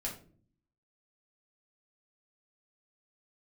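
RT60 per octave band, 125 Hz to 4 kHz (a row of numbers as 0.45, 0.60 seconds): 0.90, 0.85, 0.55, 0.35, 0.30, 0.30 seconds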